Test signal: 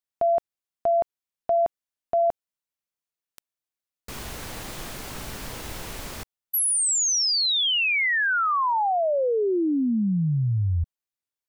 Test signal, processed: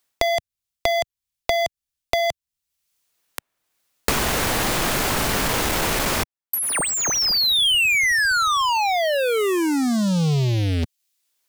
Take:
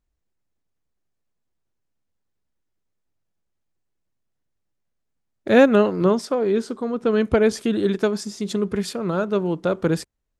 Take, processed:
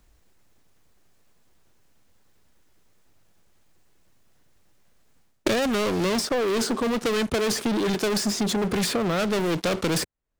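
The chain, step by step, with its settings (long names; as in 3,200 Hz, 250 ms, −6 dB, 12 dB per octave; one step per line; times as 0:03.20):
low-shelf EQ 390 Hz −3.5 dB
reversed playback
downward compressor 6 to 1, threshold −31 dBFS
reversed playback
leveller curve on the samples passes 5
multiband upward and downward compressor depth 100%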